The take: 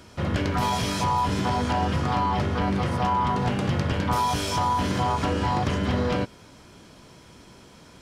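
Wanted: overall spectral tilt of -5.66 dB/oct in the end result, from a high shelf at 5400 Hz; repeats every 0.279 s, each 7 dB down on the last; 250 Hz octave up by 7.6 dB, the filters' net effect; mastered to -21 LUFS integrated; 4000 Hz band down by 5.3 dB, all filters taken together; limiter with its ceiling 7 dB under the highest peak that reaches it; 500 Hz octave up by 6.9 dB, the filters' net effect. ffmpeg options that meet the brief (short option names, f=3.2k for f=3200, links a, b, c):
-af "equalizer=f=250:t=o:g=8.5,equalizer=f=500:t=o:g=6,equalizer=f=4k:t=o:g=-5,highshelf=f=5.4k:g=-6,alimiter=limit=-15dB:level=0:latency=1,aecho=1:1:279|558|837|1116|1395:0.447|0.201|0.0905|0.0407|0.0183,volume=2dB"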